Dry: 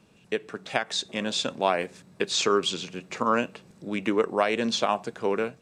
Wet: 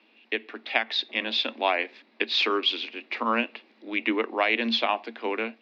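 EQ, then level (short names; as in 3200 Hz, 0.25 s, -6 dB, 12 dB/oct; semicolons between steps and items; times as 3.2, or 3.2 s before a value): rippled Chebyshev high-pass 220 Hz, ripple 6 dB; air absorption 280 m; band shelf 3100 Hz +14.5 dB; +1.5 dB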